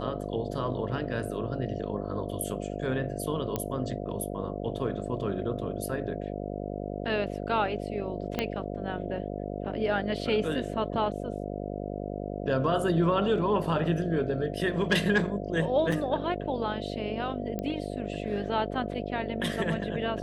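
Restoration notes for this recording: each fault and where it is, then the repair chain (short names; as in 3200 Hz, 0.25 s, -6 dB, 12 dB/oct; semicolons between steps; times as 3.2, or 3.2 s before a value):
buzz 50 Hz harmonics 14 -35 dBFS
3.56 pop -14 dBFS
8.39 pop -14 dBFS
15.92 gap 4.6 ms
17.59 pop -20 dBFS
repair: de-click; de-hum 50 Hz, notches 14; interpolate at 15.92, 4.6 ms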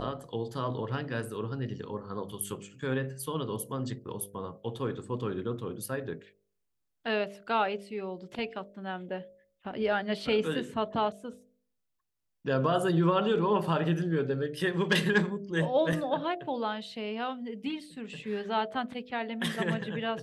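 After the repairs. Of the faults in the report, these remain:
8.39 pop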